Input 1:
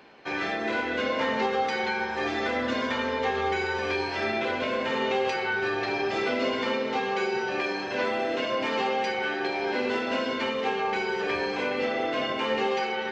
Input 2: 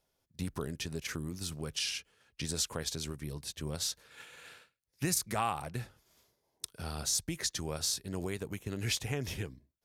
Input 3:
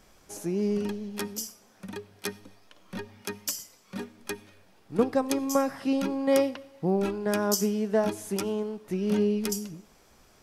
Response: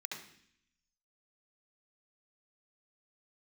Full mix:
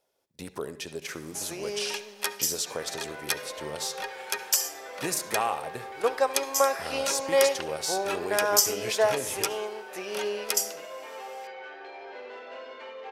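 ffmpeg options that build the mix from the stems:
-filter_complex "[0:a]highshelf=frequency=4200:gain=-8,asoftclip=type=tanh:threshold=-21.5dB,adelay=2400,volume=-12.5dB[link_01];[1:a]equalizer=frequency=230:width_type=o:width=2:gain=12.5,volume=-0.5dB,asplit=2[link_02][link_03];[link_03]volume=-9dB[link_04];[2:a]tiltshelf=frequency=630:gain=-6.5,adelay=1050,volume=0dB,asplit=2[link_05][link_06];[link_06]volume=-12.5dB[link_07];[3:a]atrim=start_sample=2205[link_08];[link_04][link_07]amix=inputs=2:normalize=0[link_09];[link_09][link_08]afir=irnorm=-1:irlink=0[link_10];[link_01][link_02][link_05][link_10]amix=inputs=4:normalize=0,lowshelf=frequency=340:width_type=q:width=1.5:gain=-14"

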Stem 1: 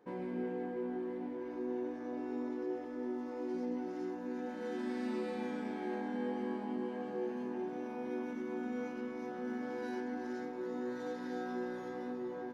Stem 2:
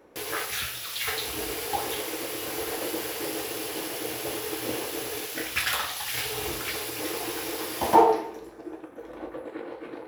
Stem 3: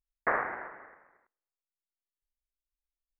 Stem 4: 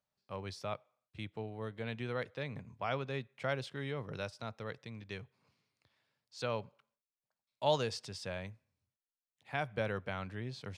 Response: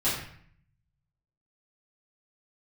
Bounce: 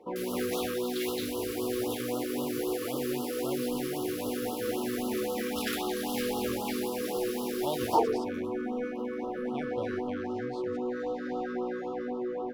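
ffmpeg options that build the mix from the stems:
-filter_complex "[0:a]asplit=2[link_01][link_02];[link_02]highpass=frequency=720:poles=1,volume=21dB,asoftclip=type=tanh:threshold=-20.5dB[link_03];[link_01][link_03]amix=inputs=2:normalize=0,lowpass=frequency=1000:poles=1,volume=-6dB,volume=0dB[link_04];[1:a]volume=-7.5dB[link_05];[2:a]adelay=250,volume=-11.5dB[link_06];[3:a]volume=-4.5dB[link_07];[link_04][link_05][link_06][link_07]amix=inputs=4:normalize=0,afftfilt=real='re*(1-between(b*sr/1024,740*pow(2000/740,0.5+0.5*sin(2*PI*3.8*pts/sr))/1.41,740*pow(2000/740,0.5+0.5*sin(2*PI*3.8*pts/sr))*1.41))':imag='im*(1-between(b*sr/1024,740*pow(2000/740,0.5+0.5*sin(2*PI*3.8*pts/sr))/1.41,740*pow(2000/740,0.5+0.5*sin(2*PI*3.8*pts/sr))*1.41))':win_size=1024:overlap=0.75"

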